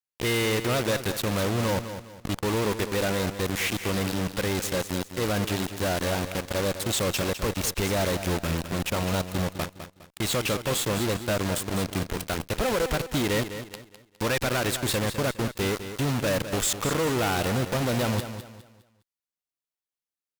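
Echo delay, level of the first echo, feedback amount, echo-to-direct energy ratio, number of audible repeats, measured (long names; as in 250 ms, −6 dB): 205 ms, −10.5 dB, 33%, −10.0 dB, 3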